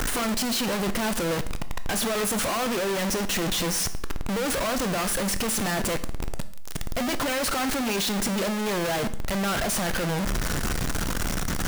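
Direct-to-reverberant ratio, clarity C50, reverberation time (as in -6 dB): 11.0 dB, 14.5 dB, 0.65 s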